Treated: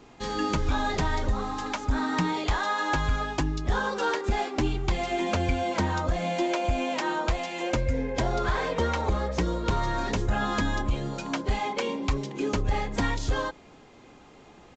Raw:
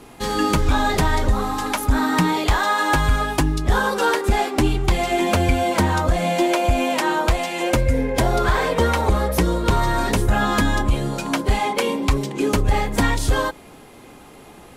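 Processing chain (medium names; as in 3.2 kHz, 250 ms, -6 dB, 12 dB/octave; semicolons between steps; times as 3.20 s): resampled via 16 kHz; trim -8 dB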